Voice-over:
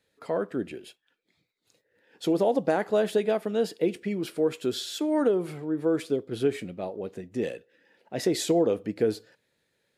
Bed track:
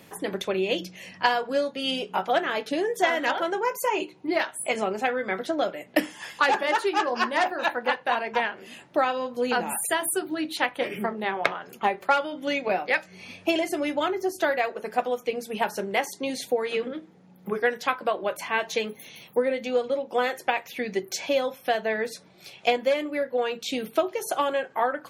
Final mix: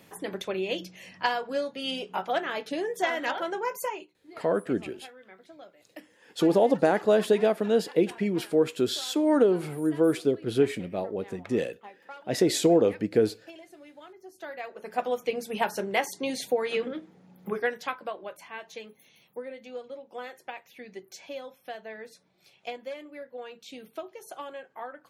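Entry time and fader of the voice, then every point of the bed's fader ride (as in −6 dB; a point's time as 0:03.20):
4.15 s, +2.5 dB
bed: 0:03.85 −4.5 dB
0:04.12 −23 dB
0:14.16 −23 dB
0:15.11 −1 dB
0:17.40 −1 dB
0:18.50 −14.5 dB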